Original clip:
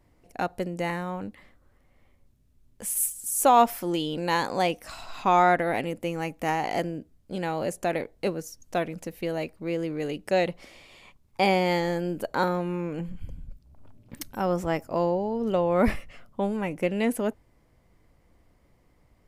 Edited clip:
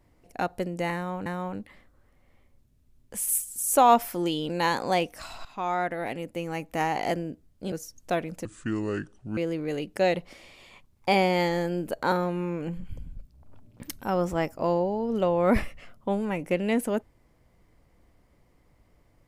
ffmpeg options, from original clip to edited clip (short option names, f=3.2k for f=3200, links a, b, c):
-filter_complex "[0:a]asplit=6[a][b][c][d][e][f];[a]atrim=end=1.262[g];[b]atrim=start=0.938:end=5.13,asetpts=PTS-STARTPTS,afade=t=out:st=4.188:d=0.004:c=hsin:silence=0.223872[h];[c]atrim=start=5.13:end=7.402,asetpts=PTS-STARTPTS,afade=t=in:d=1.43:silence=0.223872[i];[d]atrim=start=8.358:end=9.094[j];[e]atrim=start=9.09:end=9.69,asetpts=PTS-STARTPTS,asetrate=28665,aresample=44100[k];[f]atrim=start=9.686[l];[h][i]concat=n=2:v=0:a=1[m];[g][m]acrossfade=d=0.004:c1=hsin:c2=hsin[n];[n][j]acrossfade=d=0.004:c1=hsin:c2=hsin[o];[o][k]acrossfade=d=0.004:c1=hsin:c2=hsin[p];[p][l]acrossfade=d=0.004:c1=hsin:c2=hsin"